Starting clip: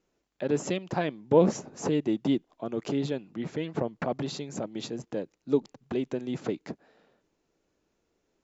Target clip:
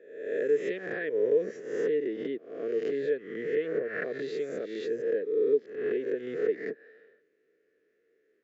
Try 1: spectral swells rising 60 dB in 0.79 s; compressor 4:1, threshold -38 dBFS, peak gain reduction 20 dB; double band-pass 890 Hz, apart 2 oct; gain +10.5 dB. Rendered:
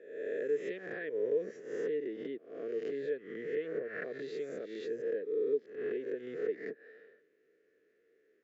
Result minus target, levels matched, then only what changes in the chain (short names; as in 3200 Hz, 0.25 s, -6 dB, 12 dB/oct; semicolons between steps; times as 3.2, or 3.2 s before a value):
compressor: peak gain reduction +7 dB
change: compressor 4:1, threshold -29 dBFS, peak gain reduction 13.5 dB